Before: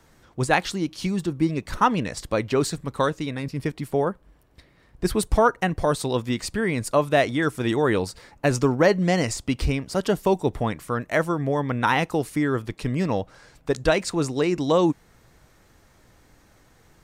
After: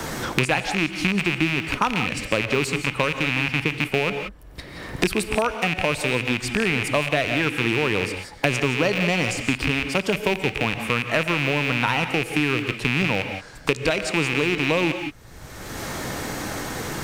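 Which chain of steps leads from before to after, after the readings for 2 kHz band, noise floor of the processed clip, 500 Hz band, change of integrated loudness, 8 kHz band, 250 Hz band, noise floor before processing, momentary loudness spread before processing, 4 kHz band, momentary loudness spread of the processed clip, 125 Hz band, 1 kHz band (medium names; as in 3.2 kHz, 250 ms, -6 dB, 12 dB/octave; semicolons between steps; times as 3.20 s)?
+7.5 dB, -42 dBFS, -2.0 dB, +1.0 dB, +1.5 dB, -0.5 dB, -58 dBFS, 9 LU, +7.5 dB, 9 LU, 0.0 dB, -1.5 dB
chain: rattle on loud lows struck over -31 dBFS, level -11 dBFS; gated-style reverb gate 200 ms rising, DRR 9.5 dB; three bands compressed up and down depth 100%; trim -2 dB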